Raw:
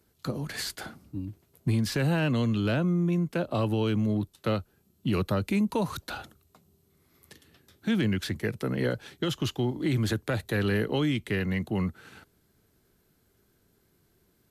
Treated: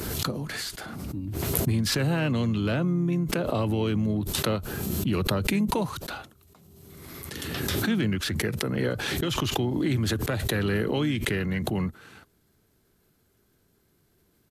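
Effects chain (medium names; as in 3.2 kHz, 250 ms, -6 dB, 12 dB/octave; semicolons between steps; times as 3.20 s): harmony voices -4 st -13 dB; swell ahead of each attack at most 25 dB/s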